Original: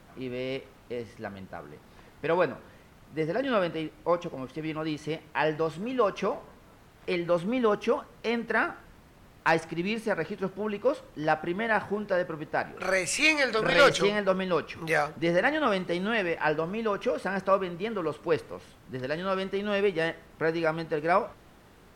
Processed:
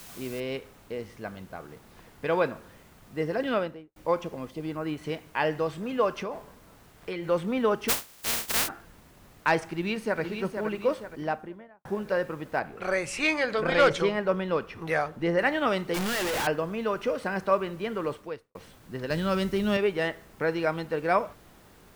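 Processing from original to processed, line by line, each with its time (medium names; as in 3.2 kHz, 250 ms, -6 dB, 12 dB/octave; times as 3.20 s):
0.40 s: noise floor step -47 dB -64 dB
3.47–3.96 s: studio fade out
4.49–5.03 s: peaking EQ 1.3 kHz -> 6 kHz -10.5 dB
6.18–7.29 s: compression 4:1, threshold -30 dBFS
7.88–8.67 s: spectral contrast reduction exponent 0.11
9.68–10.21 s: echo throw 470 ms, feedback 50%, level -7 dB
10.95–11.85 s: studio fade out
12.59–15.39 s: treble shelf 2.8 kHz -8.5 dB
15.94–16.47 s: one-bit comparator
18.13–18.55 s: fade out quadratic
19.10–19.77 s: tone controls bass +11 dB, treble +9 dB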